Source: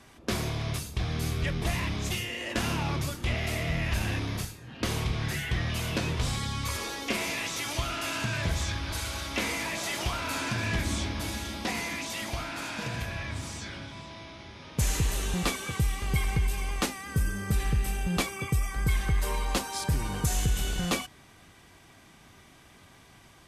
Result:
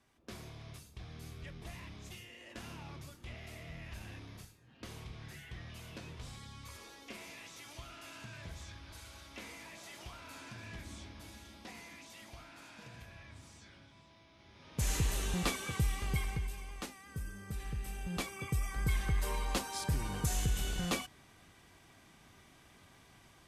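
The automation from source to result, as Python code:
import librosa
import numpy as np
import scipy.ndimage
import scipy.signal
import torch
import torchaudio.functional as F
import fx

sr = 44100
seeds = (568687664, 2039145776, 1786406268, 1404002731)

y = fx.gain(x, sr, db=fx.line((14.3, -18.0), (14.92, -5.0), (16.03, -5.0), (16.66, -14.5), (17.53, -14.5), (18.72, -6.0)))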